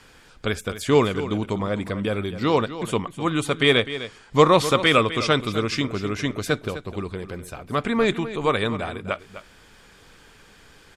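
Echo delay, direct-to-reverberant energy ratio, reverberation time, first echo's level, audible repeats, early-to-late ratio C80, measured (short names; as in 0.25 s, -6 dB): 0.254 s, none, none, -13.0 dB, 1, none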